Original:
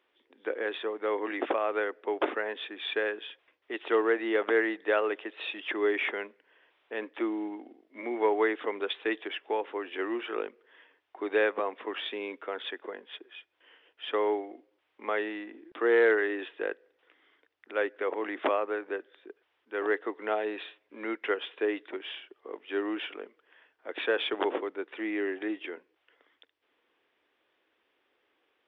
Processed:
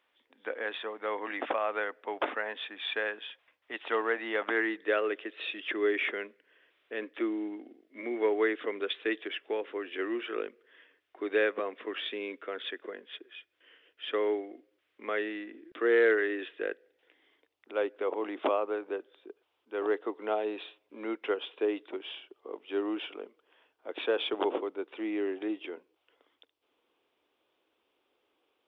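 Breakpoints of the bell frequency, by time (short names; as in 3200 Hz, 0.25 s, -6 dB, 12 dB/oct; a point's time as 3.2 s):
bell -10.5 dB 0.61 oct
4.38 s 370 Hz
4.91 s 870 Hz
16.59 s 870 Hz
17.73 s 1800 Hz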